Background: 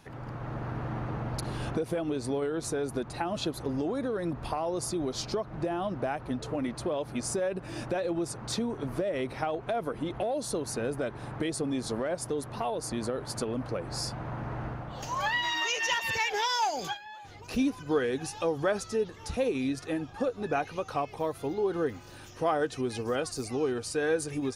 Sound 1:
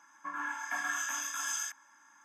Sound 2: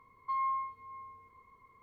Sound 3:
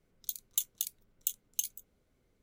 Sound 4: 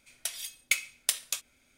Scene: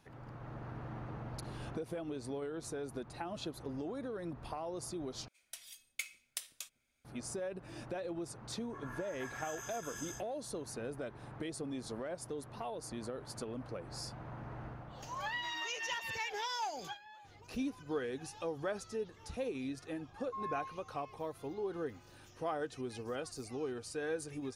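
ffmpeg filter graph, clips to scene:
ffmpeg -i bed.wav -i cue0.wav -i cue1.wav -i cue2.wav -i cue3.wav -filter_complex "[0:a]volume=-10dB[link_01];[4:a]acrossover=split=310[link_02][link_03];[link_02]adelay=150[link_04];[link_04][link_03]amix=inputs=2:normalize=0[link_05];[1:a]highshelf=frequency=11000:gain=4.5[link_06];[2:a]lowpass=1100[link_07];[link_01]asplit=2[link_08][link_09];[link_08]atrim=end=5.284[link_10];[link_05]atrim=end=1.77,asetpts=PTS-STARTPTS,volume=-14dB[link_11];[link_09]atrim=start=7.046[link_12];[link_06]atrim=end=2.24,asetpts=PTS-STARTPTS,volume=-12.5dB,afade=type=in:duration=0.004:curve=hsin,afade=type=out:start_time=2.236:duration=0.004:curve=hsin,adelay=8490[link_13];[link_07]atrim=end=1.82,asetpts=PTS-STARTPTS,volume=-6.5dB,afade=type=in:duration=0.004:curve=hsin,afade=type=out:start_time=1.816:duration=0.004:curve=hsin,adelay=883764S[link_14];[link_10][link_11]acrossfade=duration=0.004:curve1=hsin:curve2=hsin[link_15];[link_15][link_12]acrossfade=duration=0.004:curve1=hsin:curve2=hsin[link_16];[link_16][link_13][link_14]amix=inputs=3:normalize=0" out.wav

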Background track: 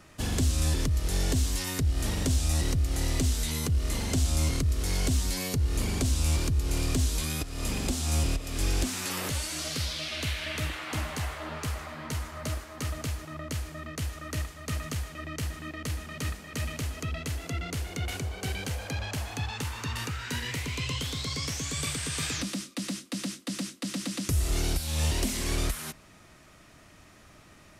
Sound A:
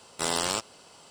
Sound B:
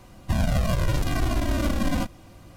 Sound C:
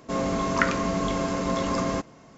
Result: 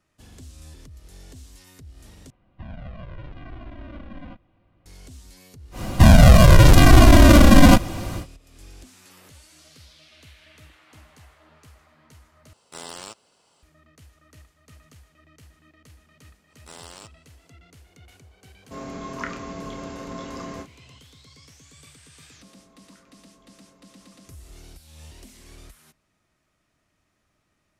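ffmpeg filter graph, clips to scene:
ffmpeg -i bed.wav -i cue0.wav -i cue1.wav -i cue2.wav -filter_complex "[2:a]asplit=2[link_01][link_02];[1:a]asplit=2[link_03][link_04];[3:a]asplit=2[link_05][link_06];[0:a]volume=-18dB[link_07];[link_01]lowpass=frequency=3100:width=0.5412,lowpass=frequency=3100:width=1.3066[link_08];[link_02]alimiter=level_in=19.5dB:limit=-1dB:release=50:level=0:latency=1[link_09];[link_05]asplit=2[link_10][link_11];[link_11]adelay=29,volume=-6dB[link_12];[link_10][link_12]amix=inputs=2:normalize=0[link_13];[link_06]acompressor=threshold=-41dB:ratio=3:attack=0.11:release=60:knee=1:detection=peak[link_14];[link_07]asplit=3[link_15][link_16][link_17];[link_15]atrim=end=2.304[link_18];[link_08]atrim=end=2.56,asetpts=PTS-STARTPTS,volume=-15dB[link_19];[link_16]atrim=start=4.856:end=12.534[link_20];[link_03]atrim=end=1.1,asetpts=PTS-STARTPTS,volume=-10.5dB[link_21];[link_17]atrim=start=13.626[link_22];[link_09]atrim=end=2.56,asetpts=PTS-STARTPTS,volume=-1.5dB,afade=type=in:duration=0.1,afade=type=out:start_time=2.46:duration=0.1,adelay=5710[link_23];[link_04]atrim=end=1.1,asetpts=PTS-STARTPTS,volume=-15.5dB,afade=type=in:duration=0.05,afade=type=out:start_time=1.05:duration=0.05,adelay=16470[link_24];[link_13]atrim=end=2.37,asetpts=PTS-STARTPTS,volume=-10dB,afade=type=in:duration=0.004:curve=hsin,afade=type=out:start_time=2.366:duration=0.004:curve=hsin,adelay=18620[link_25];[link_14]atrim=end=2.37,asetpts=PTS-STARTPTS,volume=-16.5dB,afade=type=in:duration=0.004:curve=hsin,afade=type=out:start_time=2.366:duration=0.004:curve=hsin,adelay=22340[link_26];[link_18][link_19]acrossfade=duration=0.004:curve1=hsin:curve2=hsin[link_27];[link_27][link_20]acrossfade=duration=0.004:curve1=hsin:curve2=hsin[link_28];[link_28][link_21]acrossfade=duration=0.004:curve1=hsin:curve2=hsin[link_29];[link_29][link_22]acrossfade=duration=0.004:curve1=hsin:curve2=hsin[link_30];[link_30][link_23][link_24][link_25][link_26]amix=inputs=5:normalize=0" out.wav

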